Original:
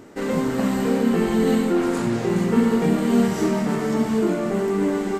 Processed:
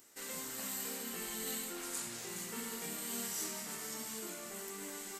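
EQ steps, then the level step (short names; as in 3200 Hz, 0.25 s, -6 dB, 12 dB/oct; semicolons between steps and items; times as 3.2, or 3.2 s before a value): pre-emphasis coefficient 0.97; low shelf 100 Hz +7.5 dB; high shelf 5900 Hz +6 dB; -3.5 dB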